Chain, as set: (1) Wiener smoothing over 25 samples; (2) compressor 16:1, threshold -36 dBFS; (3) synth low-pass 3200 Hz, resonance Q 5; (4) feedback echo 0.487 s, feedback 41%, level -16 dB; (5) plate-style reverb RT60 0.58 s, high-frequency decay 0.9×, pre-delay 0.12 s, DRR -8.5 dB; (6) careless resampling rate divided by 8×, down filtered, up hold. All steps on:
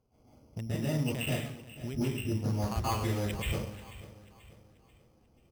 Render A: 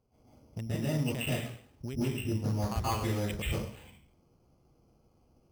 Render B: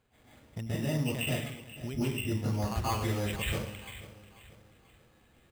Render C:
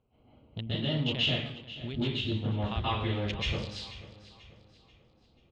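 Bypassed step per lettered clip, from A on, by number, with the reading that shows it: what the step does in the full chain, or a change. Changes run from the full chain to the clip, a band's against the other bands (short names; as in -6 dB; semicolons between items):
4, momentary loudness spread change -4 LU; 1, 2 kHz band +2.5 dB; 6, 8 kHz band -11.5 dB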